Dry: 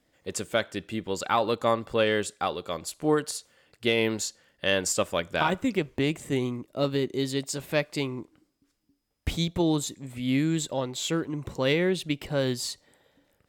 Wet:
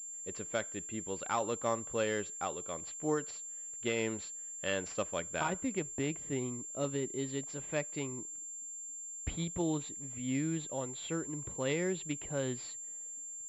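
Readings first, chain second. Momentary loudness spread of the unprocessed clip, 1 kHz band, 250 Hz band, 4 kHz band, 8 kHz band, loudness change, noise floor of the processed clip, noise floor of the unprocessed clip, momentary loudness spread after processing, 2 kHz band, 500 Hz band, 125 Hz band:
9 LU, -9.0 dB, -9.0 dB, -13.5 dB, -0.5 dB, -8.5 dB, -45 dBFS, -74 dBFS, 8 LU, -9.5 dB, -9.0 dB, -9.0 dB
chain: class-D stage that switches slowly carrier 7.3 kHz; trim -9 dB

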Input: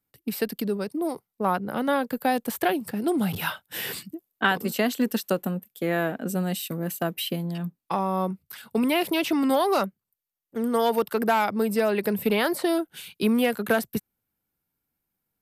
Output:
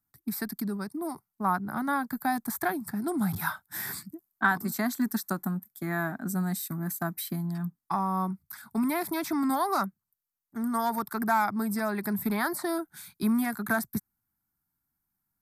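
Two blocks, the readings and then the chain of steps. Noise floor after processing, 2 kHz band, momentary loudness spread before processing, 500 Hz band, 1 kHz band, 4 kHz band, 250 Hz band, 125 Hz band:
-85 dBFS, -2.5 dB, 9 LU, -11.0 dB, -2.0 dB, -11.0 dB, -3.5 dB, -1.5 dB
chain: static phaser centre 1.2 kHz, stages 4

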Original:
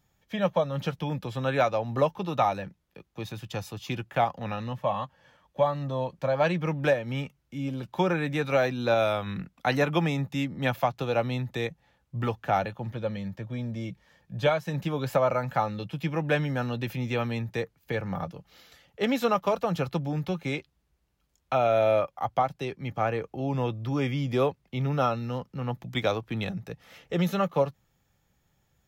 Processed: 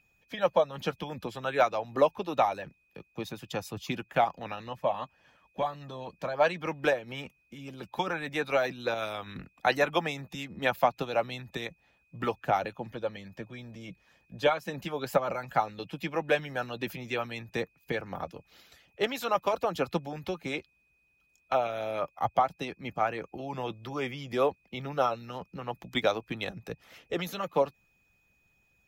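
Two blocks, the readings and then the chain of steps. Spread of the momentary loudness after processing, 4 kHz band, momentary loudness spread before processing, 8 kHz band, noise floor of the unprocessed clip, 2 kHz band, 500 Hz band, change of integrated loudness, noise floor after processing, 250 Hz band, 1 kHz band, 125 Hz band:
14 LU, -0.5 dB, 10 LU, 0.0 dB, -73 dBFS, -0.5 dB, -2.5 dB, -3.0 dB, -71 dBFS, -7.0 dB, -1.0 dB, -11.5 dB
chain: whistle 2.5 kHz -55 dBFS; harmonic-percussive split harmonic -15 dB; trim +1.5 dB

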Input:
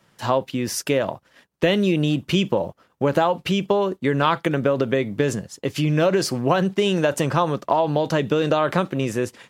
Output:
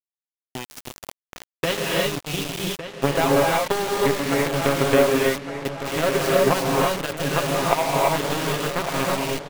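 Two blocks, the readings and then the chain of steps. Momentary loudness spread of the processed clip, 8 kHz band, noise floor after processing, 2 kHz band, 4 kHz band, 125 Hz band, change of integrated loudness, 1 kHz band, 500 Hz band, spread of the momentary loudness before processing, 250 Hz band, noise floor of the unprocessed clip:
13 LU, +4.0 dB, under -85 dBFS, +2.5 dB, +1.5 dB, -4.5 dB, -0.5 dB, 0.0 dB, -0.5 dB, 6 LU, -4.0 dB, -63 dBFS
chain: hum notches 60/120/180/240/300/360 Hz; comb 7.4 ms, depth 58%; power-law waveshaper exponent 2; trance gate "x.xx.xxx" 73 bpm -60 dB; gated-style reverb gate 370 ms rising, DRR -3.5 dB; bit crusher 5-bit; on a send: filtered feedback delay 1158 ms, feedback 50%, low-pass 4.5 kHz, level -10.5 dB; on the sum: trim +1.5 dB

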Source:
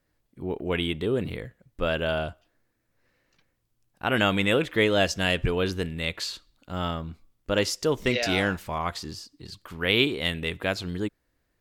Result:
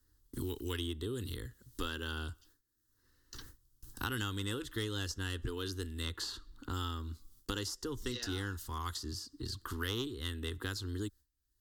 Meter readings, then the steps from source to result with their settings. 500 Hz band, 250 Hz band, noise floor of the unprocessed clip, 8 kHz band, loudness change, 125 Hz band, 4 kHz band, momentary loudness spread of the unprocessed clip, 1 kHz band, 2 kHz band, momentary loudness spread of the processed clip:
-17.0 dB, -12.0 dB, -74 dBFS, -6.0 dB, -13.0 dB, -7.5 dB, -11.0 dB, 16 LU, -12.5 dB, -15.0 dB, 10 LU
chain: gate with hold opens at -56 dBFS; amplifier tone stack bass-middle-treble 6-0-2; Chebyshev shaper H 3 -17 dB, 4 -24 dB, 5 -25 dB, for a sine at -22.5 dBFS; static phaser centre 630 Hz, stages 6; three bands compressed up and down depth 100%; trim +13 dB

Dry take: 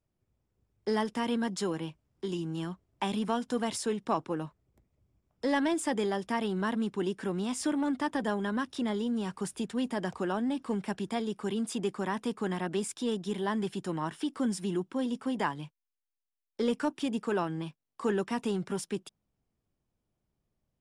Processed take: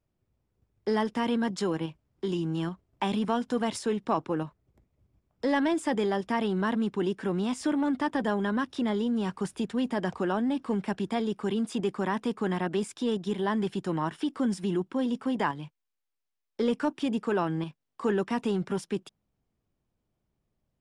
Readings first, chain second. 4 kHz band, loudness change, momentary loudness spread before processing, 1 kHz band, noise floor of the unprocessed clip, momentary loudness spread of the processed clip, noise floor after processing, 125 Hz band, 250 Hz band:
+1.0 dB, +3.0 dB, 6 LU, +3.0 dB, under -85 dBFS, 6 LU, -83 dBFS, +3.5 dB, +3.0 dB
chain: in parallel at -1 dB: level held to a coarse grid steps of 18 dB; on the sum: treble shelf 6.8 kHz -10.5 dB

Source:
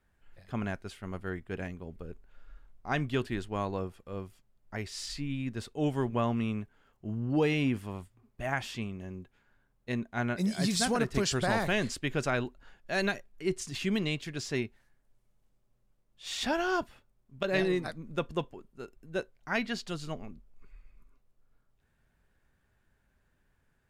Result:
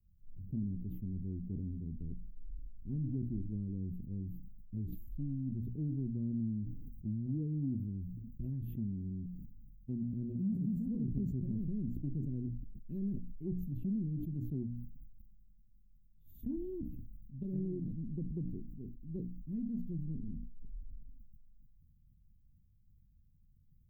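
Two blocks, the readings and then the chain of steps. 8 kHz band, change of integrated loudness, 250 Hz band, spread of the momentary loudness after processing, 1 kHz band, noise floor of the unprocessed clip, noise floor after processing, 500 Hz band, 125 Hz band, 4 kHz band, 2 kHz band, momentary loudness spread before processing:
under -35 dB, -7.0 dB, -3.5 dB, 13 LU, under -40 dB, -73 dBFS, -65 dBFS, -17.5 dB, -1.0 dB, under -40 dB, under -40 dB, 16 LU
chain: inverse Chebyshev band-stop 650–9400 Hz, stop band 50 dB; hum notches 60/120/180/240/300 Hz; compression 2.5:1, threshold -44 dBFS, peak gain reduction 12 dB; touch-sensitive phaser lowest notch 290 Hz, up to 3.2 kHz, full sweep at -41 dBFS; decay stretcher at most 26 dB/s; trim +6 dB

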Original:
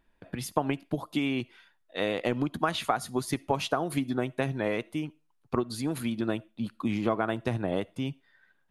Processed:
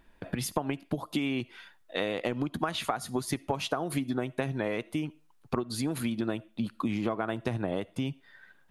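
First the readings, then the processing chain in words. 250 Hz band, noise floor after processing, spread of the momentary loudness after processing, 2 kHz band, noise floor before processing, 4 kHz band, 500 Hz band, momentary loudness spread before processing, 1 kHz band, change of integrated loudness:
-1.0 dB, -62 dBFS, 5 LU, -2.0 dB, -70 dBFS, -0.5 dB, -2.5 dB, 8 LU, -3.0 dB, -1.5 dB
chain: compression 3:1, threshold -39 dBFS, peak gain reduction 14 dB; trim +8.5 dB

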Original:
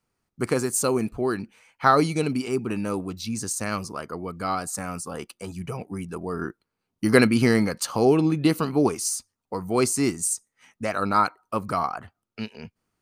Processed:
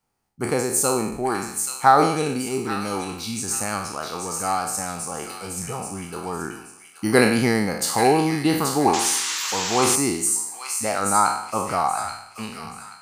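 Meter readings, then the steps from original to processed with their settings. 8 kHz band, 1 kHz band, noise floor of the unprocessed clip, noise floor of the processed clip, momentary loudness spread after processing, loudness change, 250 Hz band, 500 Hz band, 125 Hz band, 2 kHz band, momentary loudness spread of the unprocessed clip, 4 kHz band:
+7.0 dB, +5.5 dB, -82 dBFS, -47 dBFS, 13 LU, +2.5 dB, -0.5 dB, +1.0 dB, -1.0 dB, +3.0 dB, 15 LU, +7.0 dB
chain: spectral sustain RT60 0.72 s; peaking EQ 810 Hz +11.5 dB 0.3 oct; on a send: feedback echo behind a high-pass 830 ms, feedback 31%, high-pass 2 kHz, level -4 dB; on the sum: painted sound noise, 8.93–9.96 s, 900–7800 Hz -27 dBFS; treble shelf 7 kHz +5.5 dB; trim -2 dB

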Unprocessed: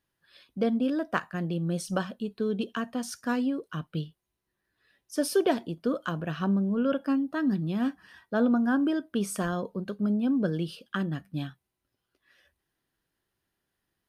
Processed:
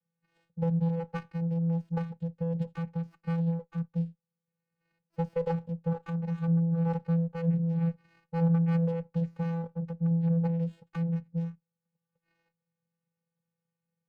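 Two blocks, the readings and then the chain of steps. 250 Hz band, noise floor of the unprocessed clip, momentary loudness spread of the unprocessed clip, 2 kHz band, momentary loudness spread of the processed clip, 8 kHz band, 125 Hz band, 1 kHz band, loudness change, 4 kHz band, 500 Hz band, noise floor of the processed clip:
-3.0 dB, -83 dBFS, 10 LU, -13.5 dB, 9 LU, under -25 dB, +7.5 dB, -6.5 dB, -1.5 dB, under -15 dB, -5.5 dB, under -85 dBFS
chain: Savitzky-Golay filter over 25 samples; vocoder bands 8, square 167 Hz; sliding maximum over 5 samples

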